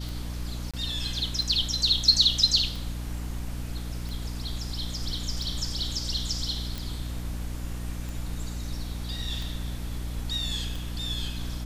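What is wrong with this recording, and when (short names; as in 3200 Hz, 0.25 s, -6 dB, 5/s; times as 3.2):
hum 60 Hz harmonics 5 -34 dBFS
tick 45 rpm
0.71–0.74 gap 26 ms
6.78 pop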